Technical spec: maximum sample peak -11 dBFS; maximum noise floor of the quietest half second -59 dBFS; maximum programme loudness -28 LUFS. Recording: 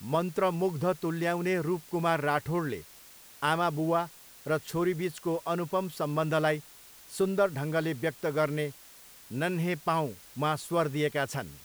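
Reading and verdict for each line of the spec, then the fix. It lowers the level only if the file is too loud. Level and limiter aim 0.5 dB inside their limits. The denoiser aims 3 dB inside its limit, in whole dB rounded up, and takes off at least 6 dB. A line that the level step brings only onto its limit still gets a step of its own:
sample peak -13.0 dBFS: pass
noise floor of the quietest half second -52 dBFS: fail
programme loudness -30.0 LUFS: pass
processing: noise reduction 10 dB, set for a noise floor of -52 dBFS

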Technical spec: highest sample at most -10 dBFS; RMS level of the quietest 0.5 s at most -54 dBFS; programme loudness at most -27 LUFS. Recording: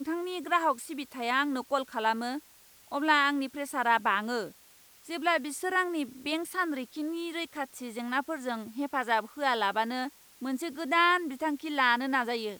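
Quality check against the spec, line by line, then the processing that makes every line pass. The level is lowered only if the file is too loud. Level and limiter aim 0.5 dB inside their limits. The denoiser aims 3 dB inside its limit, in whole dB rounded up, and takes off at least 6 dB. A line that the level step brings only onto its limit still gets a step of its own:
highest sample -10.5 dBFS: pass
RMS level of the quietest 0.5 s -58 dBFS: pass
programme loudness -30.0 LUFS: pass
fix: none needed

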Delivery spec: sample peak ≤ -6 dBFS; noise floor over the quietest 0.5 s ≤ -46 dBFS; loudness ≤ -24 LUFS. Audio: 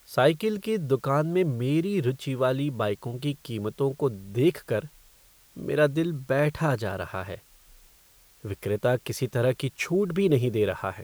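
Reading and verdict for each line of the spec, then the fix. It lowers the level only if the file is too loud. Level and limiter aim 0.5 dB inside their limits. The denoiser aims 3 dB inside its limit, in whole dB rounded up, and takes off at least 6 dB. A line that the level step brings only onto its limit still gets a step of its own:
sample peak -8.5 dBFS: pass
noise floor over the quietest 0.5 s -57 dBFS: pass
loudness -26.5 LUFS: pass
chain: none needed

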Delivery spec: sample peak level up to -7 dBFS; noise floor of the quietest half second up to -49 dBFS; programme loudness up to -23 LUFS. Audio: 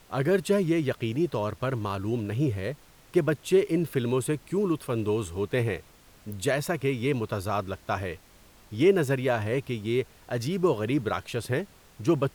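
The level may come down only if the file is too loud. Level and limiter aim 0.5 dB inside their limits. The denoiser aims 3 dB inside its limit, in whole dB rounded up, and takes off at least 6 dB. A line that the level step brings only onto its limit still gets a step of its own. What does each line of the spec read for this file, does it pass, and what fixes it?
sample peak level -11.0 dBFS: pass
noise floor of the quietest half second -55 dBFS: pass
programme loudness -28.0 LUFS: pass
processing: none needed

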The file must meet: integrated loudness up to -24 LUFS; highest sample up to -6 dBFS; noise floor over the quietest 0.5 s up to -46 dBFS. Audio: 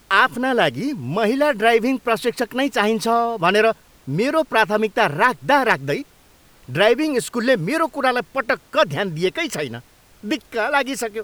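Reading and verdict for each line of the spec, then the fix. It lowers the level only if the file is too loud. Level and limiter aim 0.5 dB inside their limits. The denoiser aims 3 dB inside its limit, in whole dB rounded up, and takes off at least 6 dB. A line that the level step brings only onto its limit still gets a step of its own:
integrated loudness -19.5 LUFS: fail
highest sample -2.0 dBFS: fail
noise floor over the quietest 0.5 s -52 dBFS: pass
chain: trim -5 dB

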